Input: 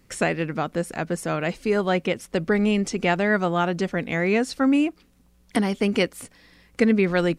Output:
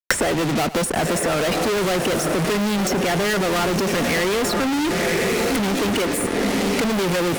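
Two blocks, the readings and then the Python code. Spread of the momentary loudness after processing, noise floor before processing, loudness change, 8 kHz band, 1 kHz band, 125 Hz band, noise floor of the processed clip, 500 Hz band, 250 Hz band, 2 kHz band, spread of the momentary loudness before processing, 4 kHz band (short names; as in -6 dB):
1 LU, -59 dBFS, +3.0 dB, +13.0 dB, +5.0 dB, +2.5 dB, -24 dBFS, +3.5 dB, +1.5 dB, +4.0 dB, 7 LU, +9.5 dB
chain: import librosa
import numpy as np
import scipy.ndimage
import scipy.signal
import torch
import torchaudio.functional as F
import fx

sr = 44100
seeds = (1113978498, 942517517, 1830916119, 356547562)

y = fx.envelope_sharpen(x, sr, power=1.5)
y = fx.highpass(y, sr, hz=130.0, slope=6)
y = fx.leveller(y, sr, passes=1)
y = fx.echo_diffused(y, sr, ms=1035, feedback_pct=40, wet_db=-14.5)
y = fx.fuzz(y, sr, gain_db=45.0, gate_db=-43.0)
y = y + 10.0 ** (-18.5 / 20.0) * np.pad(y, (int(103 * sr / 1000.0), 0))[:len(y)]
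y = fx.band_squash(y, sr, depth_pct=100)
y = F.gain(torch.from_numpy(y), -6.5).numpy()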